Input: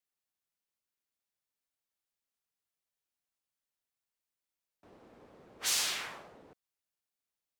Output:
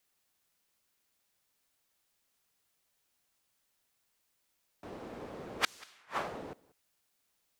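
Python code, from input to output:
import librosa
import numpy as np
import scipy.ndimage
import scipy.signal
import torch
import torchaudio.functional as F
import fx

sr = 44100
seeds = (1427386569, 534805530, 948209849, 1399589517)

y = fx.dynamic_eq(x, sr, hz=1200.0, q=0.82, threshold_db=-51.0, ratio=4.0, max_db=6)
y = fx.gate_flip(y, sr, shuts_db=-27.0, range_db=-40)
y = y + 10.0 ** (-23.5 / 20.0) * np.pad(y, (int(188 * sr / 1000.0), 0))[:len(y)]
y = y * 10.0 ** (13.0 / 20.0)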